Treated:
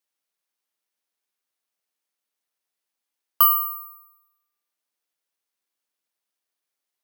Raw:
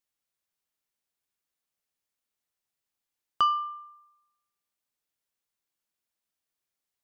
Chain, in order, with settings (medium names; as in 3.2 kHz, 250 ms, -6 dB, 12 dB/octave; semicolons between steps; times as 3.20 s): high-pass 260 Hz; careless resampling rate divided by 3×, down filtered, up zero stuff; trim +2.5 dB